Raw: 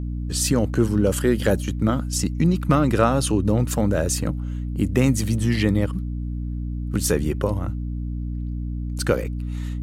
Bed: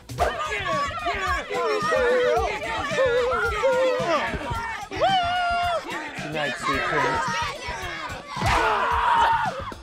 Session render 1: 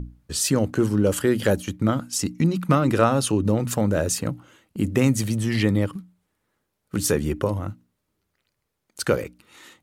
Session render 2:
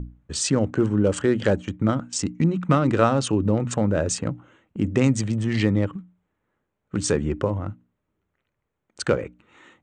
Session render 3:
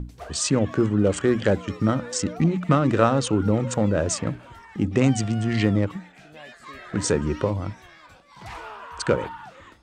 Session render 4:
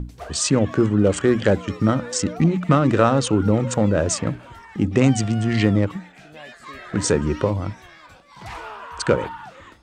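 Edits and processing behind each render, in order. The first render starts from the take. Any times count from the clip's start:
hum notches 60/120/180/240/300 Hz
local Wiener filter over 9 samples; steep low-pass 8.7 kHz 96 dB/octave
add bed -17 dB
trim +3 dB; peak limiter -3 dBFS, peak gain reduction 2 dB

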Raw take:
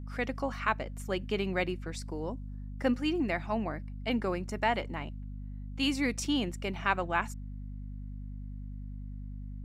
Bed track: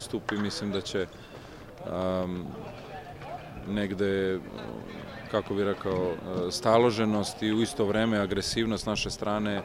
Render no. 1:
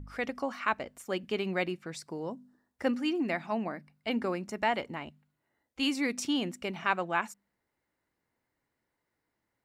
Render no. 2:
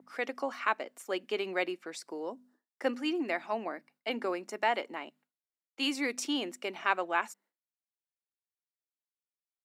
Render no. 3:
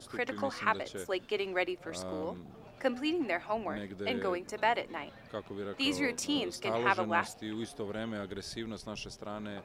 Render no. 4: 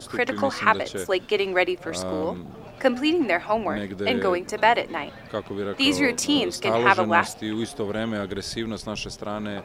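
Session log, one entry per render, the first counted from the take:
de-hum 50 Hz, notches 5
expander -57 dBFS; high-pass 290 Hz 24 dB/octave
add bed track -12 dB
trim +10.5 dB

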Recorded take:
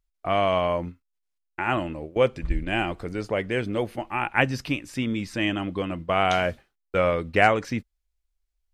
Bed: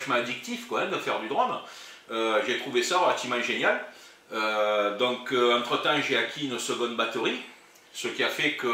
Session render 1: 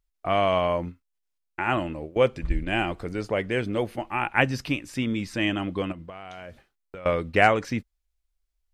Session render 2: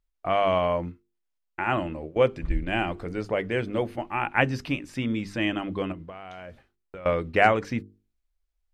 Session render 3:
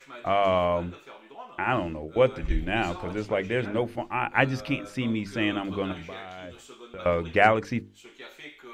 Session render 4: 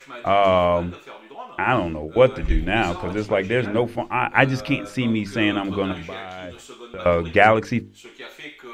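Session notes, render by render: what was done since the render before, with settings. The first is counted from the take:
5.92–7.06 s: compression 16:1, threshold -36 dBFS
treble shelf 4.1 kHz -7.5 dB; hum notches 50/100/150/200/250/300/350/400/450 Hz
add bed -18 dB
trim +6 dB; peak limiter -1 dBFS, peak gain reduction 2.5 dB

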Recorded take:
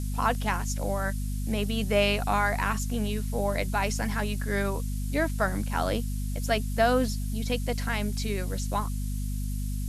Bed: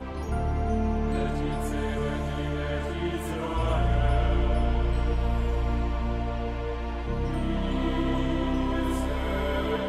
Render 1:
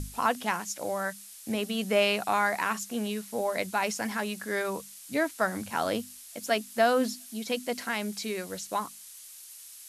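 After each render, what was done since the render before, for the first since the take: hum notches 50/100/150/200/250 Hz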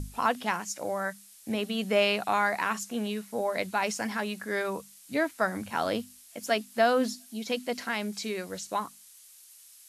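noise print and reduce 6 dB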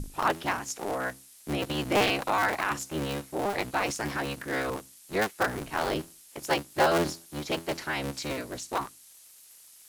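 cycle switcher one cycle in 3, inverted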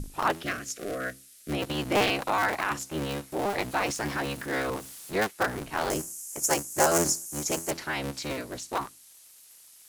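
0.43–1.52 s: Butterworth band-stop 900 Hz, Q 1.6; 3.32–5.27 s: jump at every zero crossing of -42 dBFS; 5.90–7.71 s: resonant high shelf 5.1 kHz +10.5 dB, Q 3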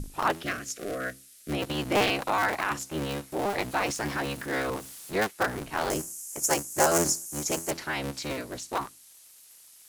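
no audible change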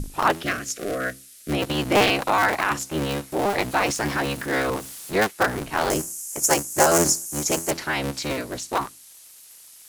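trim +6 dB; peak limiter -1 dBFS, peak gain reduction 2 dB

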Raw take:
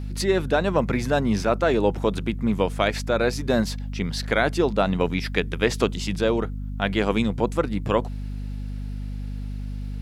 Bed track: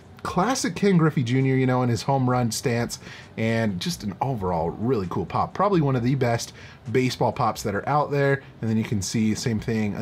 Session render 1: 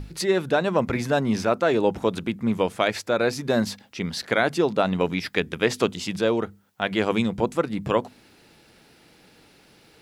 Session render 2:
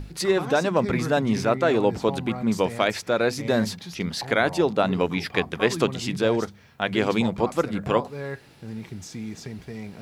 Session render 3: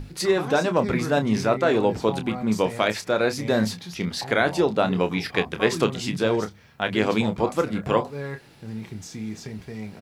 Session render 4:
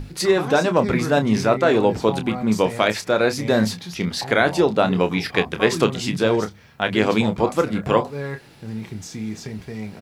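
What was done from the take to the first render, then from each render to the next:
hum notches 50/100/150/200/250 Hz
add bed track -12 dB
doubling 28 ms -9.5 dB
trim +3.5 dB; peak limiter -2 dBFS, peak gain reduction 1 dB

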